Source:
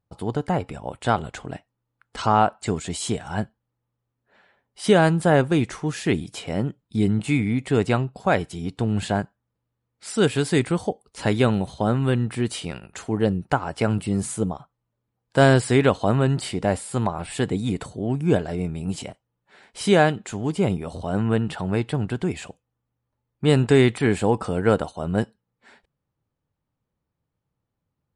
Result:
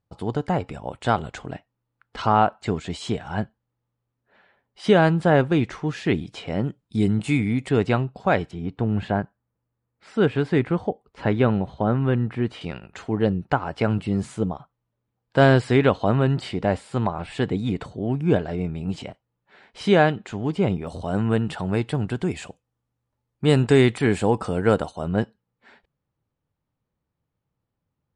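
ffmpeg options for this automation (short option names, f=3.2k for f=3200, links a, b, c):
-af "asetnsamples=n=441:p=0,asendcmd='1.53 lowpass f 4200;6.64 lowpass f 9200;7.69 lowpass f 4400;8.51 lowpass f 2200;12.61 lowpass f 4100;20.87 lowpass f 9700;25.08 lowpass f 4400',lowpass=6.9k"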